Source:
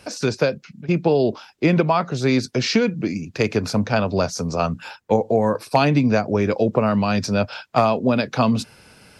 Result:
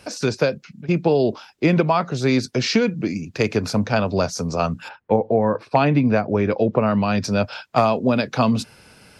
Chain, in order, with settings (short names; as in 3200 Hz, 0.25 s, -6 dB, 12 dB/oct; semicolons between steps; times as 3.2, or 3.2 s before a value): 4.88–7.23 LPF 2100 Hz -> 4400 Hz 12 dB/oct